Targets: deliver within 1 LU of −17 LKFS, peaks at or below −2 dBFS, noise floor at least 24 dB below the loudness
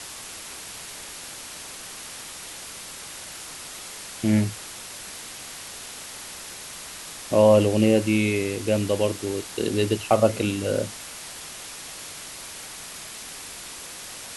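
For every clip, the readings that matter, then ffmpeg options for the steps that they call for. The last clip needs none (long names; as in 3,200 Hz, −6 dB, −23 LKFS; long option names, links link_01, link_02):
background noise floor −39 dBFS; target noise floor −51 dBFS; integrated loudness −27.0 LKFS; sample peak −5.0 dBFS; target loudness −17.0 LKFS
→ -af "afftdn=noise_reduction=12:noise_floor=-39"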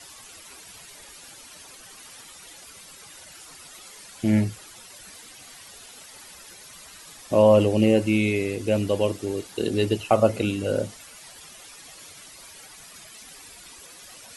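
background noise floor −46 dBFS; target noise floor −47 dBFS
→ -af "afftdn=noise_reduction=6:noise_floor=-46"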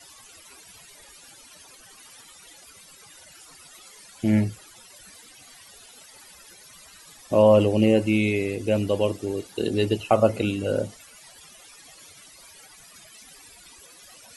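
background noise floor −50 dBFS; integrated loudness −22.5 LKFS; sample peak −5.0 dBFS; target loudness −17.0 LKFS
→ -af "volume=5.5dB,alimiter=limit=-2dB:level=0:latency=1"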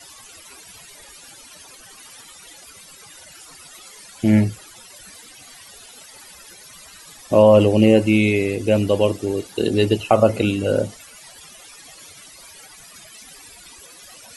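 integrated loudness −17.5 LKFS; sample peak −2.0 dBFS; background noise floor −44 dBFS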